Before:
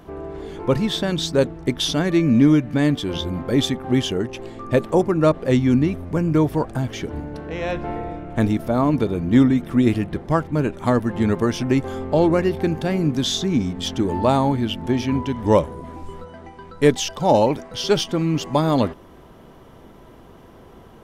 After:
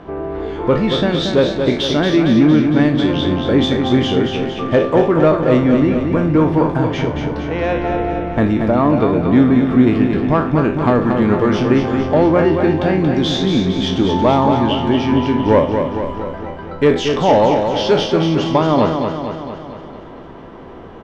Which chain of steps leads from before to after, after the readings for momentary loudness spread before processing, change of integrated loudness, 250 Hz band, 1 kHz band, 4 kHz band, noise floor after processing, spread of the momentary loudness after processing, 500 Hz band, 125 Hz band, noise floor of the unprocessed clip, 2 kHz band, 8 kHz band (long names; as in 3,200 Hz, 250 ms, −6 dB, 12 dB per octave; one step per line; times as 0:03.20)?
11 LU, +5.5 dB, +5.5 dB, +7.0 dB, +4.0 dB, −34 dBFS, 9 LU, +6.5 dB, +4.0 dB, −46 dBFS, +6.5 dB, can't be measured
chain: peak hold with a decay on every bin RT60 0.37 s
low-pass filter 4,200 Hz 12 dB per octave
low-shelf EQ 190 Hz −6.5 dB
in parallel at −1.5 dB: downward compressor, threshold −25 dBFS, peak gain reduction 14 dB
on the sum: soft clipping −7.5 dBFS, distortion −20 dB
high-shelf EQ 3,300 Hz −9 dB
repeating echo 229 ms, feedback 59%, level −6 dB
level +4 dB